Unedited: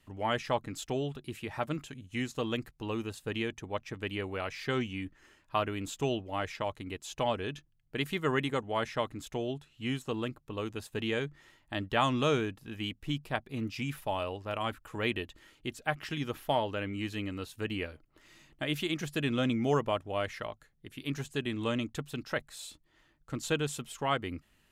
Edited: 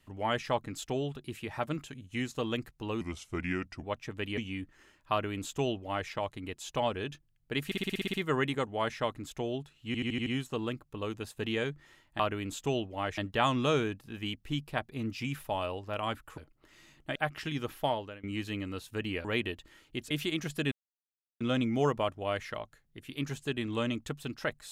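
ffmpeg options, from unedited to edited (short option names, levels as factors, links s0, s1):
-filter_complex "[0:a]asplit=25[s0][s1][s2][s3][s4][s5][s6][s7][s8][s9][s10][s11][s12][s13][s14][s15][s16][s17][s18][s19][s20][s21][s22][s23][s24];[s0]atrim=end=3.014[s25];[s1]atrim=start=3.01:end=3.67,asetpts=PTS-STARTPTS,asetrate=35280,aresample=44100,atrim=end_sample=36382,asetpts=PTS-STARTPTS[s26];[s2]atrim=start=3.666:end=4.212[s27];[s3]atrim=start=4.808:end=8.152[s28];[s4]atrim=start=8.088:end=8.152[s29];[s5]atrim=start=8.088:end=8.152[s30];[s6]atrim=start=8.088:end=8.152[s31];[s7]atrim=start=8.088:end=8.152[s32];[s8]atrim=start=8.088:end=8.152[s33];[s9]atrim=start=8.088:end=8.152[s34];[s10]atrim=start=8.088:end=8.152[s35];[s11]atrim=start=8.088:end=9.902[s36];[s12]atrim=start=9.818:end=9.902[s37];[s13]atrim=start=9.818:end=9.902[s38];[s14]atrim=start=9.818:end=9.902[s39];[s15]atrim=start=9.818:end=9.902[s40];[s16]atrim=start=9.818:end=11.752[s41];[s17]atrim=start=5.548:end=6.532[s42];[s18]atrim=start=11.748:end=14.952[s43];[s19]atrim=start=17.898:end=18.682[s44];[s20]atrim=start=15.808:end=16.89,asetpts=PTS-STARTPTS,afade=t=out:st=0.672:d=0.41:silence=0.0668344[s45];[s21]atrim=start=16.89:end=17.902,asetpts=PTS-STARTPTS,afade=t=in:d=0.004:c=hsin:silence=0.0668344[s46];[s22]atrim=start=14.948:end=15.812[s47];[s23]atrim=start=18.678:end=19.29,asetpts=PTS-STARTPTS,afade=t=out:st=0.608:d=0.004:c=hsin,apad=pad_dur=0.69[s48];[s24]atrim=start=19.29,asetpts=PTS-STARTPTS,afade=t=in:d=0.004:c=hsin[s49];[s25][s26]acrossfade=d=0.004:c1=hsin:c2=hsin[s50];[s50][s27]acrossfade=d=0.004:c1=hsin:c2=hsin[s51];[s51][s28]acrossfade=d=0.004:c1=hsin:c2=hsin[s52];[s52][s29]acrossfade=d=0.004:c1=hsin:c2=hsin[s53];[s53][s30]acrossfade=d=0.004:c1=hsin:c2=hsin[s54];[s54][s31]acrossfade=d=0.004:c1=hsin:c2=hsin[s55];[s55][s32]acrossfade=d=0.004:c1=hsin:c2=hsin[s56];[s56][s33]acrossfade=d=0.004:c1=hsin:c2=hsin[s57];[s57][s34]acrossfade=d=0.004:c1=hsin:c2=hsin[s58];[s58][s35]acrossfade=d=0.004:c1=hsin:c2=hsin[s59];[s59][s36]acrossfade=d=0.004:c1=hsin:c2=hsin[s60];[s60][s37]acrossfade=d=0.004:c1=hsin:c2=hsin[s61];[s61][s38]acrossfade=d=0.004:c1=hsin:c2=hsin[s62];[s62][s39]acrossfade=d=0.004:c1=hsin:c2=hsin[s63];[s63][s40]acrossfade=d=0.004:c1=hsin:c2=hsin[s64];[s64][s41]acrossfade=d=0.004:c1=hsin:c2=hsin[s65];[s65][s42]acrossfade=d=0.004:c1=hsin:c2=hsin[s66];[s66][s43]acrossfade=d=0.004:c1=hsin:c2=hsin[s67];[s67][s44]acrossfade=d=0.004:c1=hsin:c2=hsin[s68];[s45][s46]concat=n=2:v=0:a=1[s69];[s68][s69]acrossfade=d=0.004:c1=hsin:c2=hsin[s70];[s70][s47]acrossfade=d=0.004:c1=hsin:c2=hsin[s71];[s48][s49]concat=n=2:v=0:a=1[s72];[s71][s72]acrossfade=d=0.004:c1=hsin:c2=hsin"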